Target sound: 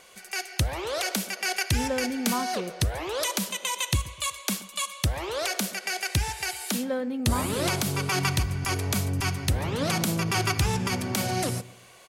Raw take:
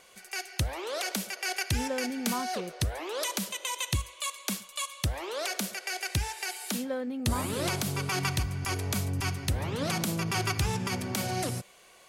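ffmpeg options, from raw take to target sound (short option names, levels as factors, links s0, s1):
-filter_complex "[0:a]asplit=2[s0][s1];[s1]adelay=125,lowpass=f=1200:p=1,volume=0.141,asplit=2[s2][s3];[s3]adelay=125,lowpass=f=1200:p=1,volume=0.35,asplit=2[s4][s5];[s5]adelay=125,lowpass=f=1200:p=1,volume=0.35[s6];[s0][s2][s4][s6]amix=inputs=4:normalize=0,volume=1.58"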